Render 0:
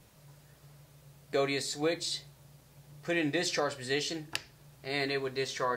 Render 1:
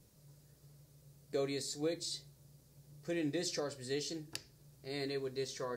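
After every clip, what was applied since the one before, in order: band shelf 1500 Hz -9 dB 2.7 oct; gain -4.5 dB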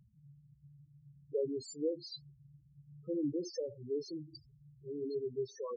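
loudest bins only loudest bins 4; gain +2.5 dB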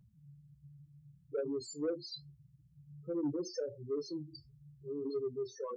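flange 0.77 Hz, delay 10 ms, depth 4.2 ms, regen -49%; soft clip -33 dBFS, distortion -19 dB; gain +5.5 dB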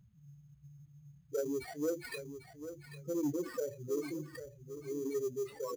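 sample-rate reducer 6500 Hz, jitter 0%; feedback echo 0.796 s, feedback 19%, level -11 dB; gain +1 dB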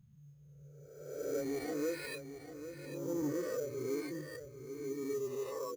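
spectral swells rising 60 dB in 1.13 s; reverse echo 0.146 s -9 dB; gain -3.5 dB

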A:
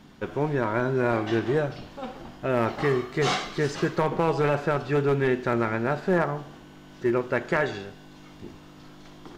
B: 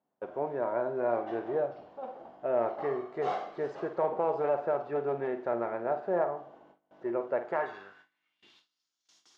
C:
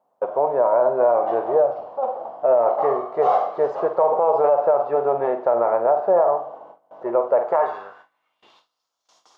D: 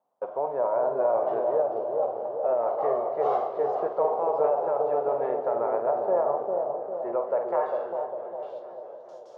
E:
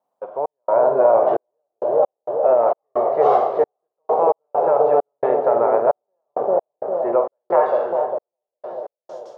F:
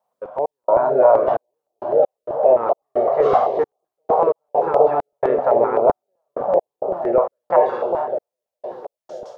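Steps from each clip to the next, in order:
flutter echo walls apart 8.7 m, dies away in 0.27 s; gate with hold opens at -36 dBFS; band-pass sweep 650 Hz -> 6000 Hz, 7.45–8.88
band shelf 760 Hz +13.5 dB; limiter -12.5 dBFS, peak gain reduction 8 dB; gain +3.5 dB
analogue delay 0.401 s, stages 2048, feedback 55%, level -3.5 dB; warbling echo 0.219 s, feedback 78%, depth 150 cents, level -15 dB; gain -8.5 dB
step gate "xx.xxx..x." 66 bpm -60 dB; AGC gain up to 10.5 dB
stepped notch 7.8 Hz 300–1700 Hz; gain +3.5 dB

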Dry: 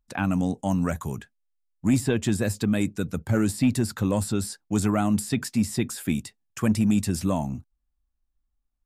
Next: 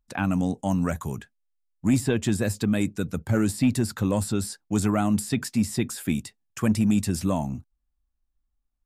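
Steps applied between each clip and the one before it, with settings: nothing audible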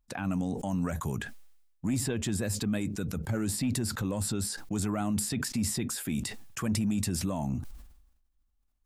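limiter -22.5 dBFS, peak gain reduction 10 dB; sustainer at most 59 dB/s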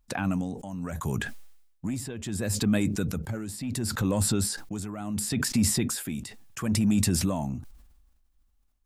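tremolo 0.71 Hz, depth 76%; gain +6.5 dB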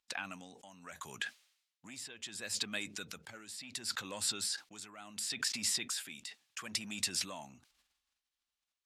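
band-pass 3500 Hz, Q 0.93

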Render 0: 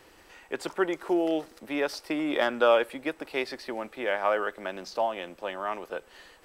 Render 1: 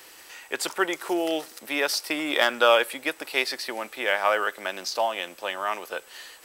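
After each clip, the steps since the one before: tilt +3.5 dB/oct; gain +4 dB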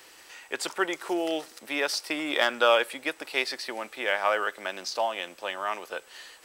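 bell 13000 Hz -8 dB 0.52 oct; gain -2.5 dB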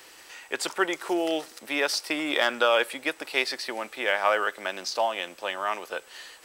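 maximiser +10.5 dB; gain -8.5 dB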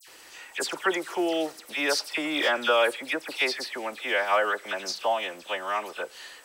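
dispersion lows, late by 77 ms, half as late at 2500 Hz

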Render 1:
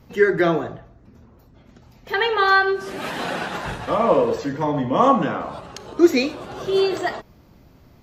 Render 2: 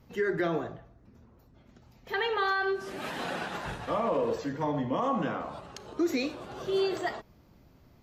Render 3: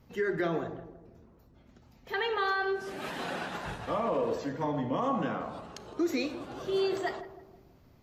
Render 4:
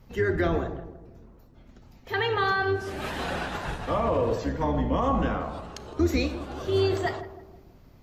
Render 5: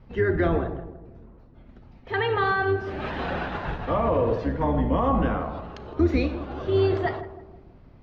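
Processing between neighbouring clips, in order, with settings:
limiter -12 dBFS, peak gain reduction 9 dB; gain -8 dB
darkening echo 0.163 s, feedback 49%, low-pass 1000 Hz, level -11 dB; gain -1.5 dB
octaver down 2 oct, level 0 dB; gain +4.5 dB
air absorption 280 m; gain +3 dB

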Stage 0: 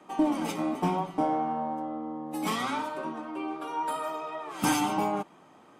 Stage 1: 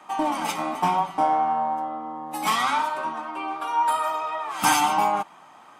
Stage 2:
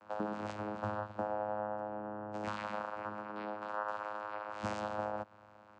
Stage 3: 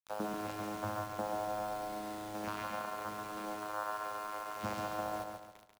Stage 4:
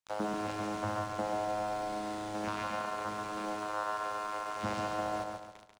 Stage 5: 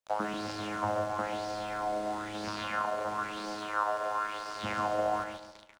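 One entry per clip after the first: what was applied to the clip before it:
resonant low shelf 610 Hz -9.5 dB, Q 1.5; gain +7.5 dB
compressor 2.5:1, threshold -29 dBFS, peak gain reduction 9.5 dB; vocoder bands 8, saw 105 Hz; gain -8.5 dB
requantised 8-bit, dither none; feedback echo 0.14 s, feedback 39%, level -5 dB; gain -1 dB
in parallel at -3.5 dB: hard clip -36.5 dBFS, distortion -11 dB; on the sum: polynomial smoothing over 9 samples
echo 0.153 s -13 dB; LFO bell 1 Hz 560–5000 Hz +12 dB; gain -1.5 dB

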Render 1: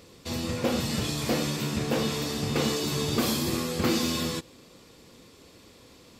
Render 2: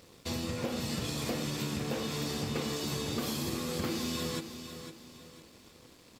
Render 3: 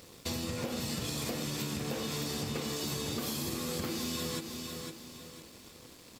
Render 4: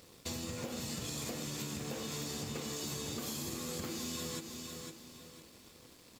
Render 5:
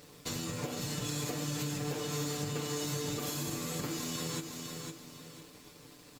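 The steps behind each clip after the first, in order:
compressor, threshold -31 dBFS, peak gain reduction 10 dB; crossover distortion -56.5 dBFS; on a send: feedback echo 0.504 s, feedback 36%, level -10 dB
high shelf 6400 Hz +6 dB; compressor 4:1, threshold -35 dBFS, peak gain reduction 6 dB; gain +2.5 dB
companded quantiser 6-bit; dynamic EQ 6900 Hz, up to +7 dB, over -59 dBFS, Q 5; gain -5 dB
comb 6.8 ms, depth 93%; in parallel at -12 dB: sample-rate reducer 5800 Hz

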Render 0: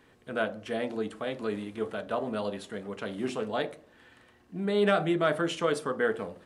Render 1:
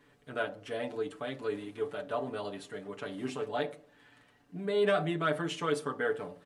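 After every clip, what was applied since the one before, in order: comb 6.9 ms, depth 82%; gain -5.5 dB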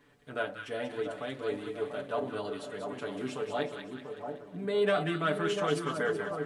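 split-band echo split 1200 Hz, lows 0.691 s, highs 0.188 s, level -6 dB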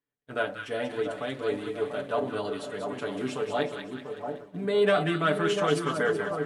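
expander -42 dBFS; gain +4.5 dB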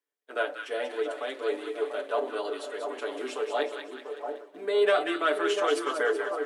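steep high-pass 320 Hz 36 dB/oct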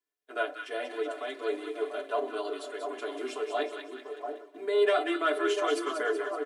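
comb 2.9 ms, depth 73%; gain -4 dB

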